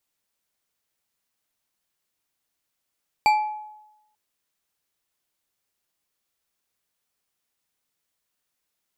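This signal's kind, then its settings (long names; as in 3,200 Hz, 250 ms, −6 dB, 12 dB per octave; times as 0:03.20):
struck glass bar, lowest mode 851 Hz, decay 0.94 s, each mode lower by 7 dB, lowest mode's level −13 dB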